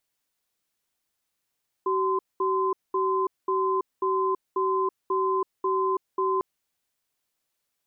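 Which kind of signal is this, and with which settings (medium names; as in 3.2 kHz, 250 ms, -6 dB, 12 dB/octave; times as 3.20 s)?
cadence 380 Hz, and 1.03 kHz, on 0.33 s, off 0.21 s, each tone -24.5 dBFS 4.55 s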